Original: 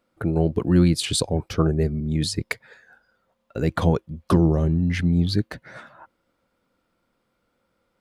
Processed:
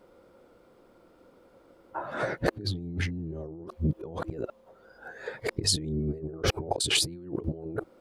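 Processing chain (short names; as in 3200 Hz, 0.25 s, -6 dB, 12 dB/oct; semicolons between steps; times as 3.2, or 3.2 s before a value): whole clip reversed; EQ curve 230 Hz 0 dB, 370 Hz +10 dB, 1900 Hz -4 dB; negative-ratio compressor -32 dBFS, ratio -1; gain -1.5 dB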